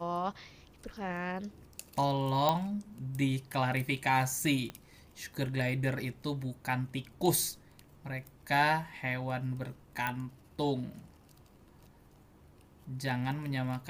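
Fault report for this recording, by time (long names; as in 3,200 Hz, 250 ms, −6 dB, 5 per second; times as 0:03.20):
0:02.49: click −14 dBFS
0:04.70: click −25 dBFS
0:10.07: click −18 dBFS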